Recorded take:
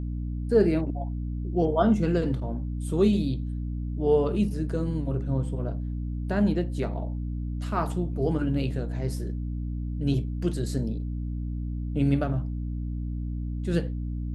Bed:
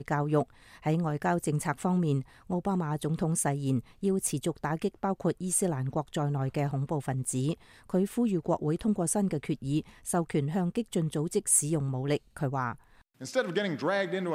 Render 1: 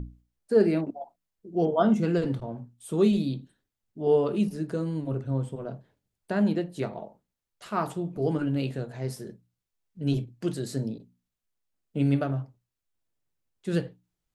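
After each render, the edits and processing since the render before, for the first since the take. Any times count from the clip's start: notches 60/120/180/240/300 Hz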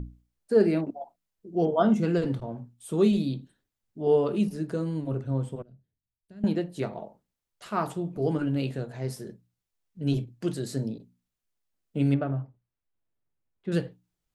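5.62–6.44 passive tone stack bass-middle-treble 10-0-1; 12.14–13.72 air absorption 410 m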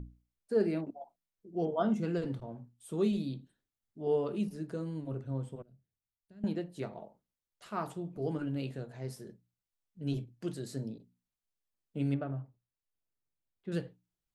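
gain -8 dB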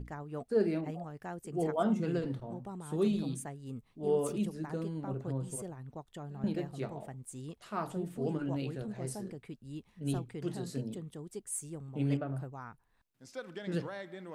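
add bed -14.5 dB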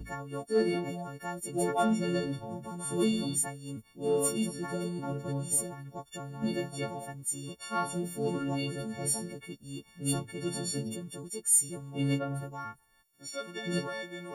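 frequency quantiser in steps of 4 st; in parallel at -9 dB: soft clip -26.5 dBFS, distortion -13 dB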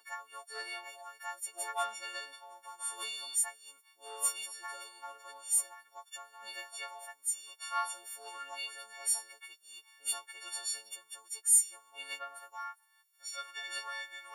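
HPF 900 Hz 24 dB/oct

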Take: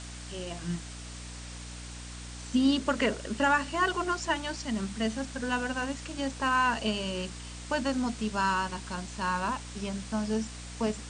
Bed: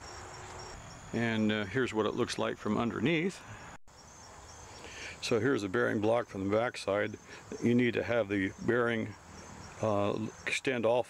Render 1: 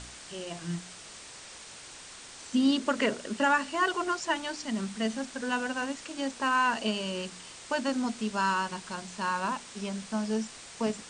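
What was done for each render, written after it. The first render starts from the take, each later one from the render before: de-hum 60 Hz, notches 5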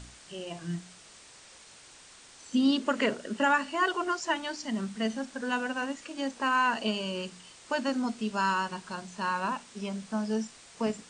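noise print and reduce 6 dB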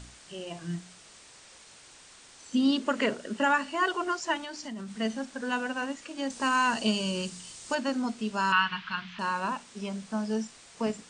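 4.37–4.99 compressor, threshold -35 dBFS; 6.3–7.75 tone controls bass +7 dB, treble +10 dB; 8.52–9.19 EQ curve 190 Hz 0 dB, 320 Hz -9 dB, 480 Hz -21 dB, 1200 Hz +8 dB, 3200 Hz +12 dB, 5500 Hz -7 dB, 8900 Hz -28 dB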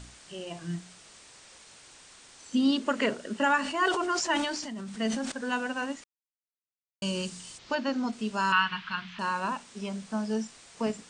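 3.57–5.32 sustainer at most 42 dB/s; 6.04–7.02 mute; 7.57–8.11 LPF 4300 Hz -> 7100 Hz 24 dB/oct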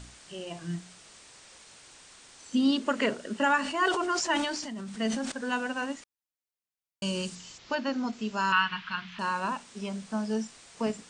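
7.35–9.12 Chebyshev low-pass 7500 Hz, order 6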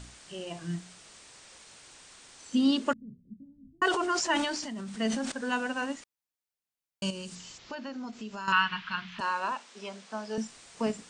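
2.93–3.82 inverse Chebyshev low-pass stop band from 970 Hz, stop band 80 dB; 7.1–8.48 compressor 2.5:1, threshold -39 dBFS; 9.2–10.38 BPF 400–6600 Hz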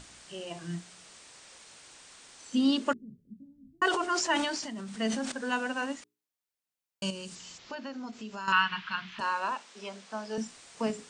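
low shelf 100 Hz -6 dB; notches 60/120/180/240/300/360/420 Hz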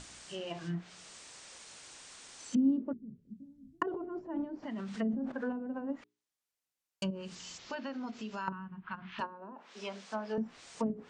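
treble ducked by the level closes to 310 Hz, closed at -27.5 dBFS; bell 6500 Hz +2 dB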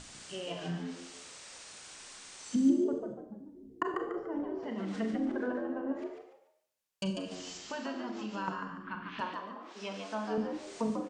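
on a send: frequency-shifting echo 0.145 s, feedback 30%, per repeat +88 Hz, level -5.5 dB; on the sum: Schroeder reverb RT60 0.6 s, combs from 30 ms, DRR 5 dB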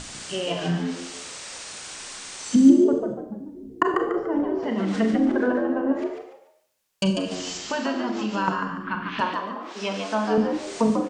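gain +12 dB

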